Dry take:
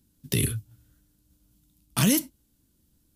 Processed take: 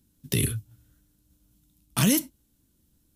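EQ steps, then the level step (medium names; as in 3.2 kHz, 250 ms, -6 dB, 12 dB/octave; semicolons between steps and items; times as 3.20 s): band-stop 4.7 kHz, Q 20; 0.0 dB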